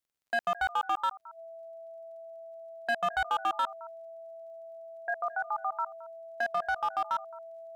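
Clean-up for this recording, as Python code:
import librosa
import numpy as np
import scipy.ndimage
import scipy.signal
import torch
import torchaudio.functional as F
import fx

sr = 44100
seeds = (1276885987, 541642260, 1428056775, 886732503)

y = fx.fix_declip(x, sr, threshold_db=-23.5)
y = fx.fix_declick_ar(y, sr, threshold=6.5)
y = fx.notch(y, sr, hz=660.0, q=30.0)
y = fx.fix_echo_inverse(y, sr, delay_ms=218, level_db=-20.0)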